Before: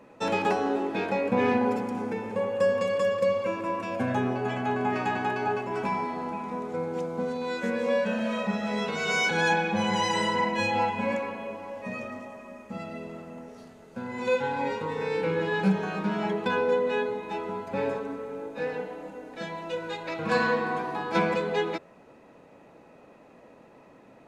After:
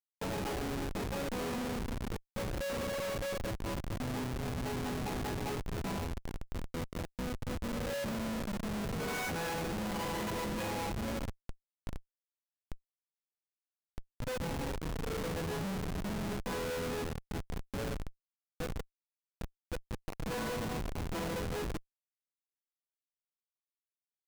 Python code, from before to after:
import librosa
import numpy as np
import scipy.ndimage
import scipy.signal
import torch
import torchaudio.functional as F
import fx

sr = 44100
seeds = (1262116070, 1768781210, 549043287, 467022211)

y = fx.schmitt(x, sr, flips_db=-26.0)
y = y * 10.0 ** (-7.0 / 20.0)